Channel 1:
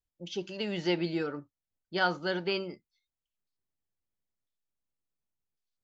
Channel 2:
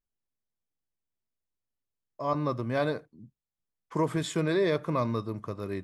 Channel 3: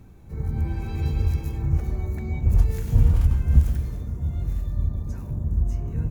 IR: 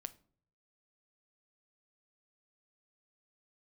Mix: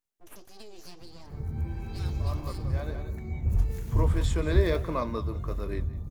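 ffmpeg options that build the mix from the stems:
-filter_complex "[0:a]firequalizer=gain_entry='entry(230,0);entry(350,-15);entry(630,0);entry(1300,-21);entry(5700,10)':delay=0.05:min_phase=1,acompressor=threshold=-36dB:ratio=6,aeval=exprs='abs(val(0))':c=same,volume=-0.5dB,asplit=3[a][b][c];[b]volume=-16dB[d];[1:a]highpass=210,volume=2.5dB,asplit=3[e][f][g];[f]volume=-13.5dB[h];[g]volume=-17.5dB[i];[2:a]adelay=1000,volume=-2.5dB[j];[c]apad=whole_len=257416[k];[e][k]sidechaincompress=threshold=-58dB:ratio=3:attack=16:release=1350[l];[3:a]atrim=start_sample=2205[m];[h][m]afir=irnorm=-1:irlink=0[n];[d][i]amix=inputs=2:normalize=0,aecho=0:1:181:1[o];[a][l][j][n][o]amix=inputs=5:normalize=0,flanger=delay=3.8:depth=8.9:regen=-68:speed=1.6:shape=triangular"

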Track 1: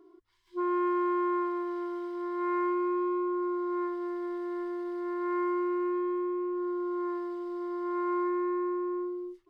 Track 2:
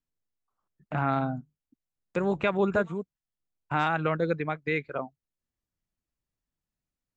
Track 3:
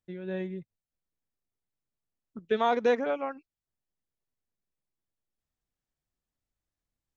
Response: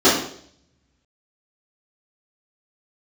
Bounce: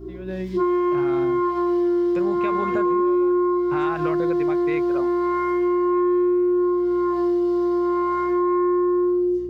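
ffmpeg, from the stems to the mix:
-filter_complex "[0:a]highshelf=f=6.3k:g=11,volume=1dB,asplit=2[a][b];[b]volume=-13dB[c];[1:a]alimiter=limit=-16dB:level=0:latency=1,volume=-1dB[d];[2:a]acrossover=split=360[e][f];[f]acompressor=threshold=-38dB:ratio=6[g];[e][g]amix=inputs=2:normalize=0,volume=1dB[h];[a][h]amix=inputs=2:normalize=0,alimiter=level_in=0.5dB:limit=-24dB:level=0:latency=1,volume=-0.5dB,volume=0dB[i];[3:a]atrim=start_sample=2205[j];[c][j]afir=irnorm=-1:irlink=0[k];[d][i][k]amix=inputs=3:normalize=0,dynaudnorm=f=110:g=5:m=6dB,aeval=exprs='val(0)+0.01*(sin(2*PI*60*n/s)+sin(2*PI*2*60*n/s)/2+sin(2*PI*3*60*n/s)/3+sin(2*PI*4*60*n/s)/4+sin(2*PI*5*60*n/s)/5)':c=same,acompressor=threshold=-19dB:ratio=6"

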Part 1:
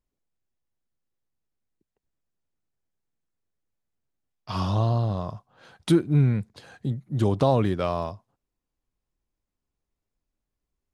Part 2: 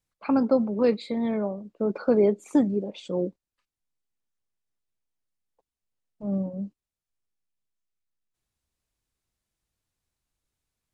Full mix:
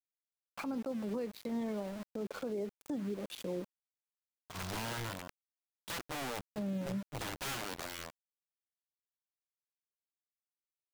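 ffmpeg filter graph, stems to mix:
-filter_complex "[0:a]aeval=exprs='(mod(10*val(0)+1,2)-1)/10':c=same,volume=-14dB[a];[1:a]highpass=f=82:w=0.5412,highpass=f=82:w=1.3066,acompressor=threshold=-35dB:ratio=2,adelay=350,volume=2dB[b];[a][b]amix=inputs=2:normalize=0,aeval=exprs='val(0)*gte(abs(val(0)),0.00944)':c=same,alimiter=level_in=6dB:limit=-24dB:level=0:latency=1:release=246,volume=-6dB"

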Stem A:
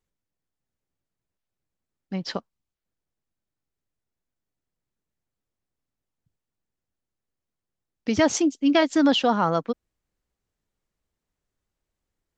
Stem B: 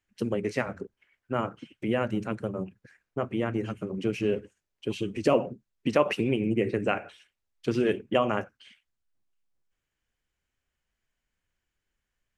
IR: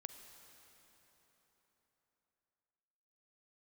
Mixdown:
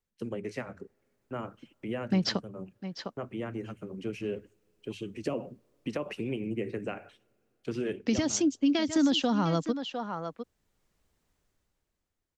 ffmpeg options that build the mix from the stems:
-filter_complex "[0:a]dynaudnorm=f=110:g=17:m=14.5dB,volume=-5dB,asplit=2[a][b];[b]volume=-15dB[c];[1:a]agate=range=-16dB:threshold=-48dB:ratio=16:detection=peak,bandreject=f=50:t=h:w=6,bandreject=f=100:t=h:w=6,acrossover=split=440[d][e];[e]acompressor=threshold=-27dB:ratio=6[f];[d][f]amix=inputs=2:normalize=0,volume=-7.5dB,asplit=2[g][h];[h]volume=-22dB[i];[2:a]atrim=start_sample=2205[j];[i][j]afir=irnorm=-1:irlink=0[k];[c]aecho=0:1:704:1[l];[a][g][k][l]amix=inputs=4:normalize=0,acrossover=split=320|3000[m][n][o];[n]acompressor=threshold=-29dB:ratio=6[p];[m][p][o]amix=inputs=3:normalize=0,alimiter=limit=-17dB:level=0:latency=1:release=318"

